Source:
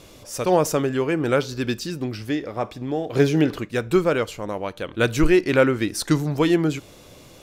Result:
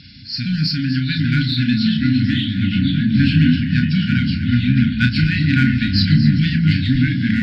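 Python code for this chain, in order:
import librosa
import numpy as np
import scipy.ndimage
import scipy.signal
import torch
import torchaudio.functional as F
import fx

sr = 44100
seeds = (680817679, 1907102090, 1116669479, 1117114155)

p1 = fx.freq_compress(x, sr, knee_hz=3900.0, ratio=4.0)
p2 = scipy.signal.sosfilt(scipy.signal.butter(2, 91.0, 'highpass', fs=sr, output='sos'), p1)
p3 = fx.low_shelf(p2, sr, hz=470.0, db=6.0)
p4 = 10.0 ** (-17.0 / 20.0) * np.tanh(p3 / 10.0 ** (-17.0 / 20.0))
p5 = p3 + F.gain(torch.from_numpy(p4), -8.0).numpy()
p6 = fx.echo_pitch(p5, sr, ms=719, semitones=-3, count=3, db_per_echo=-3.0)
p7 = fx.brickwall_bandstop(p6, sr, low_hz=280.0, high_hz=1400.0)
p8 = fx.doubler(p7, sr, ms=32.0, db=-7.0)
p9 = p8 + fx.echo_alternate(p8, sr, ms=123, hz=860.0, feedback_pct=66, wet_db=-9, dry=0)
y = F.gain(torch.from_numpy(p9), 1.5).numpy()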